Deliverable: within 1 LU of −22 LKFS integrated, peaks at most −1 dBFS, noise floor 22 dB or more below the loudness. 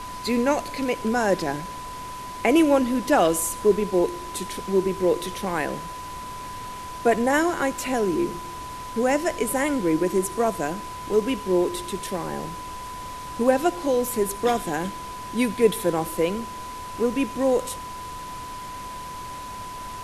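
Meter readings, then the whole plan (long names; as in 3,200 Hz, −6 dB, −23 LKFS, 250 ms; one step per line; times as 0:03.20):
interfering tone 1,000 Hz; level of the tone −34 dBFS; background noise floor −36 dBFS; target noise floor −46 dBFS; integrated loudness −24.0 LKFS; sample peak −6.5 dBFS; target loudness −22.0 LKFS
→ notch filter 1,000 Hz, Q 30
broadband denoise 10 dB, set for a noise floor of −36 dBFS
level +2 dB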